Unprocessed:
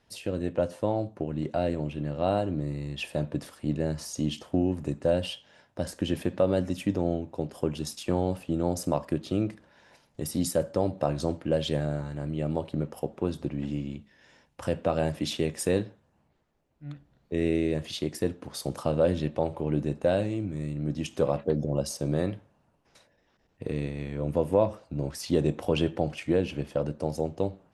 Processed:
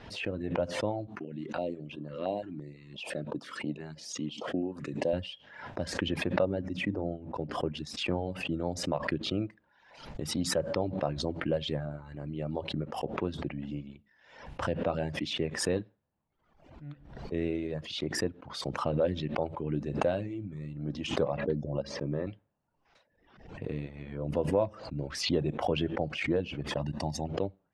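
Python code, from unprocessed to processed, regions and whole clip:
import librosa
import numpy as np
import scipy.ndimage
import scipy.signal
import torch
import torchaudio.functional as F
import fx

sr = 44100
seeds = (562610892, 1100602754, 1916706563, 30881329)

y = fx.chain(x, sr, fx.highpass(hz=200.0, slope=12),
    fx.filter_held_notch(hz=5.9, low_hz=530.0, high_hz=2000.0), at=(1.07, 5.13))
y = fx.chain(y, sr, fx.high_shelf(hz=2200.0, db=-10.5),
    fx.hum_notches(base_hz=60, count=5), at=(6.45, 7.74))
y = fx.chain(y, sr, fx.lowpass(hz=2100.0, slope=12),
    fx.notch_comb(f0_hz=730.0), at=(21.82, 22.27))
y = fx.chain(y, sr, fx.high_shelf(hz=3400.0, db=7.0),
    fx.comb(ms=1.1, depth=0.82), at=(26.76, 27.28))
y = fx.dereverb_blind(y, sr, rt60_s=0.95)
y = scipy.signal.sosfilt(scipy.signal.butter(2, 3600.0, 'lowpass', fs=sr, output='sos'), y)
y = fx.pre_swell(y, sr, db_per_s=74.0)
y = y * 10.0 ** (-4.0 / 20.0)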